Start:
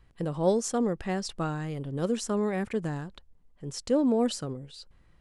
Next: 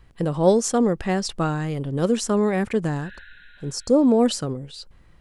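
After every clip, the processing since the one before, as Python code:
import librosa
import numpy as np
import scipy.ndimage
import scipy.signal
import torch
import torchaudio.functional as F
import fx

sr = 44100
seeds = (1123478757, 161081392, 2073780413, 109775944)

y = fx.spec_repair(x, sr, seeds[0], start_s=3.05, length_s=0.98, low_hz=1400.0, high_hz=4200.0, source='both')
y = y * librosa.db_to_amplitude(7.5)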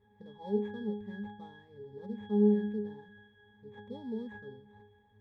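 y = fx.dmg_noise_colour(x, sr, seeds[1], colour='pink', level_db=-46.0)
y = fx.sample_hold(y, sr, seeds[2], rate_hz=4900.0, jitter_pct=20)
y = fx.octave_resonator(y, sr, note='G#', decay_s=0.55)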